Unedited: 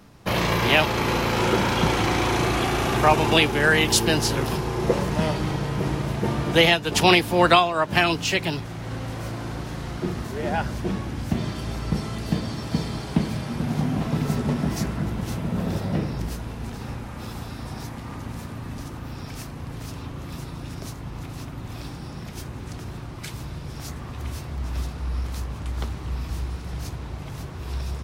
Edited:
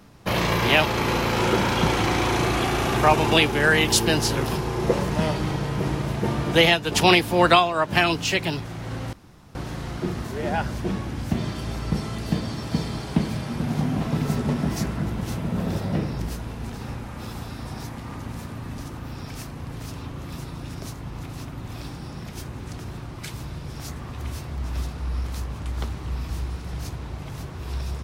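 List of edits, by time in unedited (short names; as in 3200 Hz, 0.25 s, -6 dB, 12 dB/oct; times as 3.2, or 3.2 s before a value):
9.13–9.55 room tone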